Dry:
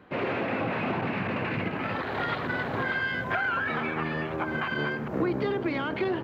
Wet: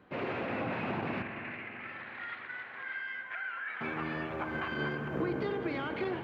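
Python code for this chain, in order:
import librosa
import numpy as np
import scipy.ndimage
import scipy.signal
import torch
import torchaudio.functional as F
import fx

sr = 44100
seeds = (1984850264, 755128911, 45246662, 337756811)

y = fx.bandpass_q(x, sr, hz=2000.0, q=2.3, at=(1.22, 3.81))
y = fx.rev_spring(y, sr, rt60_s=3.8, pass_ms=(41, 54), chirp_ms=50, drr_db=6.0)
y = y * librosa.db_to_amplitude(-6.5)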